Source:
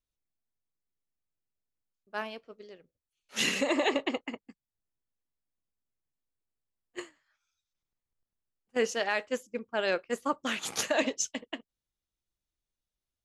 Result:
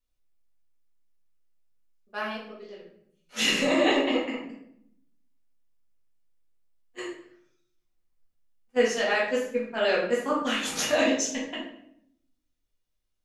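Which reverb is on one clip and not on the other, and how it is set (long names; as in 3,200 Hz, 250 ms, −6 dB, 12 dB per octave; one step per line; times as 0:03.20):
rectangular room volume 150 cubic metres, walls mixed, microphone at 1.9 metres
level −2.5 dB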